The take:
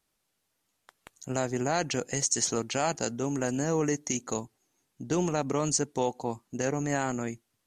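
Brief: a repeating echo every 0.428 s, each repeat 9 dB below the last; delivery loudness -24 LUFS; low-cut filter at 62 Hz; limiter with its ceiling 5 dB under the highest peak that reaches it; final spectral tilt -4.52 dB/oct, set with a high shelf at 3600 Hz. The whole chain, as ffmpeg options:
-af "highpass=62,highshelf=f=3.6k:g=-4,alimiter=limit=-20dB:level=0:latency=1,aecho=1:1:428|856|1284|1712:0.355|0.124|0.0435|0.0152,volume=8dB"

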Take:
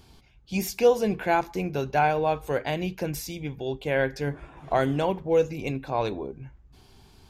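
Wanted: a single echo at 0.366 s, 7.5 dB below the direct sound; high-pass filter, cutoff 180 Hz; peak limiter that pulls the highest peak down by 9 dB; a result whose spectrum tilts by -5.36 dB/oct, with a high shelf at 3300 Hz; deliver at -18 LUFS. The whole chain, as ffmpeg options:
-af "highpass=180,highshelf=f=3.3k:g=-9,alimiter=limit=-18.5dB:level=0:latency=1,aecho=1:1:366:0.422,volume=12.5dB"

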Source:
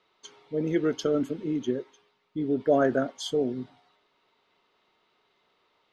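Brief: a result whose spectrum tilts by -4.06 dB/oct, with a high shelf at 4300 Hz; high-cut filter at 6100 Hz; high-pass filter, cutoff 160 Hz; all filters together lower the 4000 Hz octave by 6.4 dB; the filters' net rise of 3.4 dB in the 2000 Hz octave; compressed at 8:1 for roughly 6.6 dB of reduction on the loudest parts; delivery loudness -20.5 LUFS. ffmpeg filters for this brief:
-af "highpass=160,lowpass=6.1k,equalizer=f=2k:t=o:g=7.5,equalizer=f=4k:t=o:g=-7,highshelf=f=4.3k:g=-8.5,acompressor=threshold=-24dB:ratio=8,volume=11dB"

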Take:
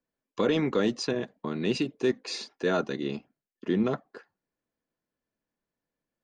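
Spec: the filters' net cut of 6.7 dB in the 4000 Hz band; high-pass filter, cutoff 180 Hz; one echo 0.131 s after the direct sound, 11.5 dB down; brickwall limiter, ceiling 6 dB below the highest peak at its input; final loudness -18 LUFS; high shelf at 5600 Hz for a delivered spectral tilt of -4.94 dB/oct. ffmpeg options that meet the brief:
-af "highpass=180,equalizer=f=4k:t=o:g=-6.5,highshelf=f=5.6k:g=-5,alimiter=limit=-21dB:level=0:latency=1,aecho=1:1:131:0.266,volume=15dB"

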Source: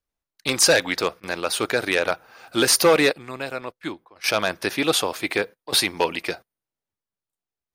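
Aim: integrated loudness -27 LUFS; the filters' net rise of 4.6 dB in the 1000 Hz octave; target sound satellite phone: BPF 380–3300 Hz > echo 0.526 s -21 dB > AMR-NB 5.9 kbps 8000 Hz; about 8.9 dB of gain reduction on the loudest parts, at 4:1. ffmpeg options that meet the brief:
-af "equalizer=f=1k:t=o:g=6,acompressor=threshold=-21dB:ratio=4,highpass=380,lowpass=3.3k,aecho=1:1:526:0.0891,volume=4dB" -ar 8000 -c:a libopencore_amrnb -b:a 5900

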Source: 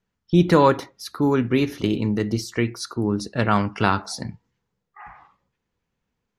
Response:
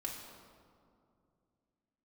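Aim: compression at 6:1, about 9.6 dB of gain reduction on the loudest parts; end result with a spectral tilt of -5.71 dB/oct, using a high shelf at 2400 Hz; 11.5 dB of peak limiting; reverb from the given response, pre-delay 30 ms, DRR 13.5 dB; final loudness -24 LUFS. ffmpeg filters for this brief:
-filter_complex "[0:a]highshelf=f=2.4k:g=-5,acompressor=threshold=-21dB:ratio=6,alimiter=limit=-22dB:level=0:latency=1,asplit=2[a][b];[1:a]atrim=start_sample=2205,adelay=30[c];[b][c]afir=irnorm=-1:irlink=0,volume=-13.5dB[d];[a][d]amix=inputs=2:normalize=0,volume=9dB"

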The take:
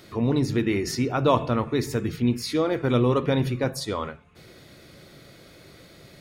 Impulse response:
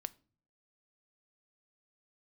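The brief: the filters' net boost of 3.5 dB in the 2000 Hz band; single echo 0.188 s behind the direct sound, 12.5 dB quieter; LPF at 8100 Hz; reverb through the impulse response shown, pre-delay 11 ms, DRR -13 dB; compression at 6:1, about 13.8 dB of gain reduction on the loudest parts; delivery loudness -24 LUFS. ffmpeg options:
-filter_complex "[0:a]lowpass=8.1k,equalizer=f=2k:t=o:g=4.5,acompressor=threshold=-31dB:ratio=6,aecho=1:1:188:0.237,asplit=2[a][b];[1:a]atrim=start_sample=2205,adelay=11[c];[b][c]afir=irnorm=-1:irlink=0,volume=15.5dB[d];[a][d]amix=inputs=2:normalize=0,volume=-2.5dB"

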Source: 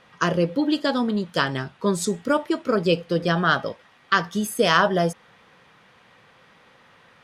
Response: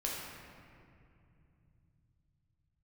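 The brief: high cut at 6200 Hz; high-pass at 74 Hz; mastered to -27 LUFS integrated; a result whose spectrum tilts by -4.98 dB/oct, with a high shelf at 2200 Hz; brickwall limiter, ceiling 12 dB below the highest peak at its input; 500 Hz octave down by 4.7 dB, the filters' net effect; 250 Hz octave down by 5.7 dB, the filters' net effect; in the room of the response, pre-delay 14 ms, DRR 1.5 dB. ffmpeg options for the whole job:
-filter_complex "[0:a]highpass=74,lowpass=6.2k,equalizer=f=250:t=o:g=-7,equalizer=f=500:t=o:g=-3.5,highshelf=f=2.2k:g=-6.5,alimiter=limit=-19.5dB:level=0:latency=1,asplit=2[a][b];[1:a]atrim=start_sample=2205,adelay=14[c];[b][c]afir=irnorm=-1:irlink=0,volume=-5dB[d];[a][d]amix=inputs=2:normalize=0,volume=1.5dB"

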